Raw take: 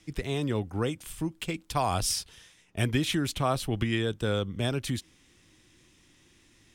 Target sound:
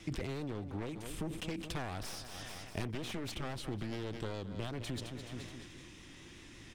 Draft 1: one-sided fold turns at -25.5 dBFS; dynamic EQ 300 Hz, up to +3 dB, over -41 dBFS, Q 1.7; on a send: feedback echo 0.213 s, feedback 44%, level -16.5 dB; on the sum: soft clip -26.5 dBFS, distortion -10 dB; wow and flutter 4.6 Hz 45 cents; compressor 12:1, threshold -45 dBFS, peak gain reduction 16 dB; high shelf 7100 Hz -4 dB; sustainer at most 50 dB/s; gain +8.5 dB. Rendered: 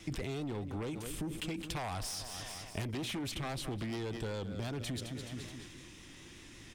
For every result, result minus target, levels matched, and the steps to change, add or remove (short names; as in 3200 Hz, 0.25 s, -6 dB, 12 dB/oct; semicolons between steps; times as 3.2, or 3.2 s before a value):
soft clip: distortion +10 dB; one-sided fold: distortion -7 dB; 8000 Hz band +3.0 dB
change: soft clip -17.5 dBFS, distortion -20 dB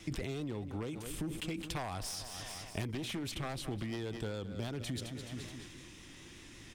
one-sided fold: distortion -7 dB; 8000 Hz band +3.0 dB
change: one-sided fold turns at -31.5 dBFS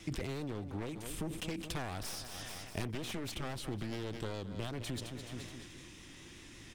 8000 Hz band +3.0 dB
change: high shelf 7100 Hz -10.5 dB